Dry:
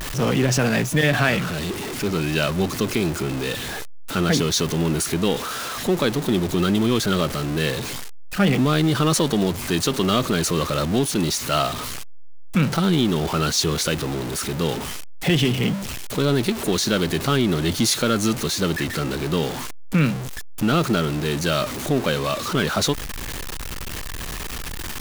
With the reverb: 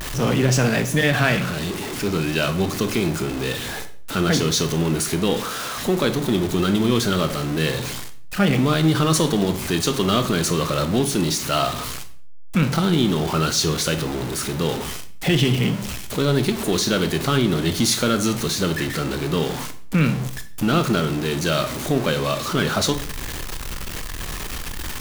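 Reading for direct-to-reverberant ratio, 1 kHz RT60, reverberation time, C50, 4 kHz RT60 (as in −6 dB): 8.5 dB, 0.45 s, 0.50 s, 13.0 dB, 0.40 s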